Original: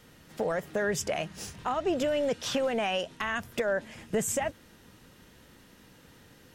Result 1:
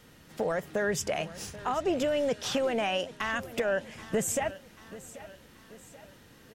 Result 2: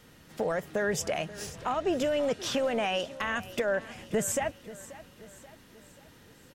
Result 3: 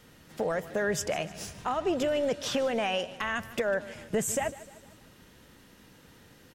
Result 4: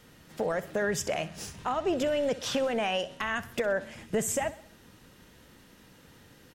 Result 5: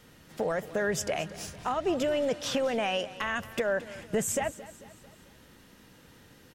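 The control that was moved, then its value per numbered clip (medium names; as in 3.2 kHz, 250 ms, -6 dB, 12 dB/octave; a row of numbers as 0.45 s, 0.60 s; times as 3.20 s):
feedback delay, time: 784 ms, 533 ms, 151 ms, 63 ms, 222 ms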